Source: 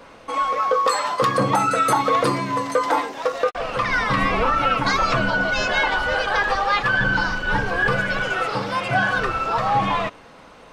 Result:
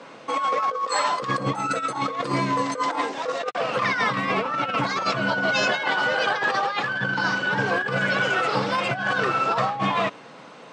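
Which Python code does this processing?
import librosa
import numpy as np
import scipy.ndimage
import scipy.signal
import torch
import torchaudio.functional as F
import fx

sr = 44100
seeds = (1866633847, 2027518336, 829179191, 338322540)

y = scipy.signal.sosfilt(scipy.signal.cheby1(4, 1.0, [130.0, 8200.0], 'bandpass', fs=sr, output='sos'), x)
y = fx.over_compress(y, sr, threshold_db=-23.0, ratio=-0.5)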